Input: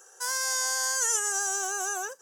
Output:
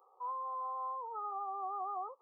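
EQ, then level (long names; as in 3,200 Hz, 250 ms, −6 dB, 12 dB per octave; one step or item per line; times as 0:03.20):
linear-phase brick-wall low-pass 1,300 Hz
spectral tilt +5 dB per octave
low-shelf EQ 480 Hz −10.5 dB
+1.5 dB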